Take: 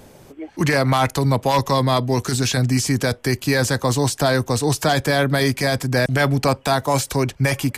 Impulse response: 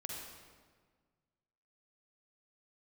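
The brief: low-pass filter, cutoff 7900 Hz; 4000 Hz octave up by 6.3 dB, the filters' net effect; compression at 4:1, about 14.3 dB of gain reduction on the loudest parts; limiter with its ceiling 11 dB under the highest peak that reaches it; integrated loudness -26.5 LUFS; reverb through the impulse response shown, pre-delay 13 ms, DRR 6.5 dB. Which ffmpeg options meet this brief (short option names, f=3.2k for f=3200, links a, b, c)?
-filter_complex "[0:a]lowpass=7.9k,equalizer=f=4k:t=o:g=8,acompressor=threshold=-31dB:ratio=4,alimiter=level_in=4dB:limit=-24dB:level=0:latency=1,volume=-4dB,asplit=2[a][b];[1:a]atrim=start_sample=2205,adelay=13[c];[b][c]afir=irnorm=-1:irlink=0,volume=-5.5dB[d];[a][d]amix=inputs=2:normalize=0,volume=9.5dB"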